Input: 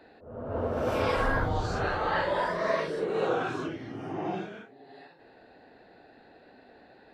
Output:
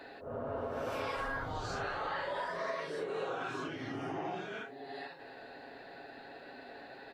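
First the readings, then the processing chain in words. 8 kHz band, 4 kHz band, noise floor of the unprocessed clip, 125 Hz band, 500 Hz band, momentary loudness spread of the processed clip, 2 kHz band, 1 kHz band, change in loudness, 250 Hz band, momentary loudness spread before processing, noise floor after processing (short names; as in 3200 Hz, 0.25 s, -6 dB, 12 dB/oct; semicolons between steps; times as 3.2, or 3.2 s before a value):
n/a, -5.0 dB, -56 dBFS, -11.5 dB, -8.5 dB, 13 LU, -6.5 dB, -7.0 dB, -9.5 dB, -8.5 dB, 11 LU, -51 dBFS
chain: low shelf 450 Hz -8.5 dB; comb 7.3 ms, depth 38%; compressor 5:1, threshold -44 dBFS, peak gain reduction 17 dB; gain +7.5 dB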